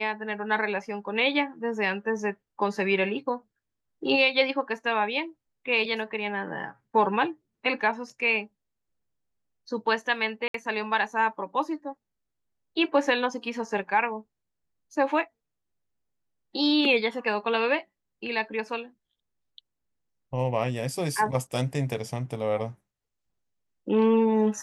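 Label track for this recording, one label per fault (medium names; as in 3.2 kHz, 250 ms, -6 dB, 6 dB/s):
10.480000	10.540000	dropout 63 ms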